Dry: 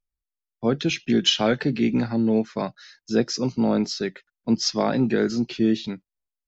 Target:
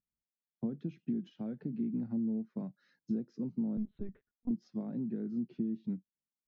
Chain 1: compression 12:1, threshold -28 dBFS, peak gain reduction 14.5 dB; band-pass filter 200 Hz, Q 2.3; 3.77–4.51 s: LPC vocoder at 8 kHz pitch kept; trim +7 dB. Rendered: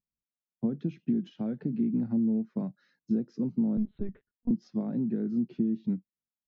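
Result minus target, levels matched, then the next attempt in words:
compression: peak gain reduction -7 dB
compression 12:1, threshold -35.5 dBFS, peak gain reduction 21.5 dB; band-pass filter 200 Hz, Q 2.3; 3.77–4.51 s: LPC vocoder at 8 kHz pitch kept; trim +7 dB

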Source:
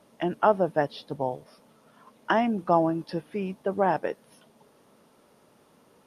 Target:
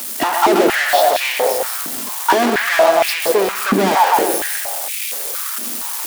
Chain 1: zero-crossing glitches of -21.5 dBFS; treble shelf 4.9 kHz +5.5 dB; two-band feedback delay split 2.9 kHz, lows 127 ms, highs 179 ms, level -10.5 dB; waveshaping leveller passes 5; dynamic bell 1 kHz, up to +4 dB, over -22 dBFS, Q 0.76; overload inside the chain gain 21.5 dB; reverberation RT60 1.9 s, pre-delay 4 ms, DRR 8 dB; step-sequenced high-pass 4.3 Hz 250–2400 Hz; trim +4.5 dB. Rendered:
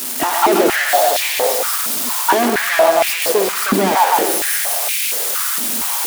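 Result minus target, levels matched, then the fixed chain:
zero-crossing glitches: distortion +11 dB
zero-crossing glitches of -33 dBFS; treble shelf 4.9 kHz +5.5 dB; two-band feedback delay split 2.9 kHz, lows 127 ms, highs 179 ms, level -10.5 dB; waveshaping leveller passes 5; dynamic bell 1 kHz, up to +4 dB, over -22 dBFS, Q 0.76; overload inside the chain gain 21.5 dB; reverberation RT60 1.9 s, pre-delay 4 ms, DRR 8 dB; step-sequenced high-pass 4.3 Hz 250–2400 Hz; trim +4.5 dB

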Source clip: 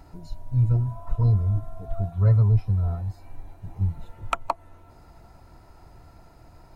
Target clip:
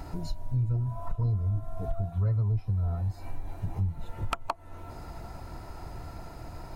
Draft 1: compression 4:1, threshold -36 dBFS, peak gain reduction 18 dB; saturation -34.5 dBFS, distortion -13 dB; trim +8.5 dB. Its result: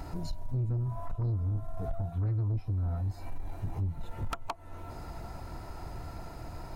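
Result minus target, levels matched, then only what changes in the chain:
saturation: distortion +14 dB
change: saturation -23.5 dBFS, distortion -27 dB

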